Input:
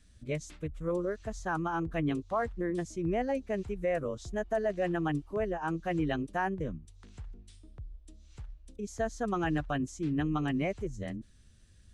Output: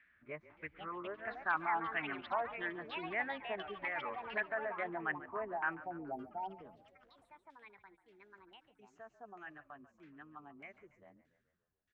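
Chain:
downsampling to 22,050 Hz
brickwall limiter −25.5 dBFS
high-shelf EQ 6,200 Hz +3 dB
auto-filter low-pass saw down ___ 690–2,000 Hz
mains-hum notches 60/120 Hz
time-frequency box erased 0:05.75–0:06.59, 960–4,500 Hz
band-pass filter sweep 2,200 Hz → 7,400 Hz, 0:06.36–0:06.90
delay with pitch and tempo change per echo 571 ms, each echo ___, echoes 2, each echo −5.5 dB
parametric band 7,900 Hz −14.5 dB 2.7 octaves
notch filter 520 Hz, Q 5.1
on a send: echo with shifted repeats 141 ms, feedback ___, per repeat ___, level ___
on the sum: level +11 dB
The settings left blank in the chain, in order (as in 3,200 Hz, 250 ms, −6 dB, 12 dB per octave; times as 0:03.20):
1.6 Hz, +5 semitones, 60%, −37 Hz, −17 dB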